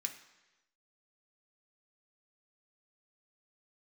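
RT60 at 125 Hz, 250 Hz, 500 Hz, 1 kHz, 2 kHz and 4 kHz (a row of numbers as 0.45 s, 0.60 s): 1.0 s, 1.0 s, 1.1 s, 1.1 s, 1.1 s, 1.1 s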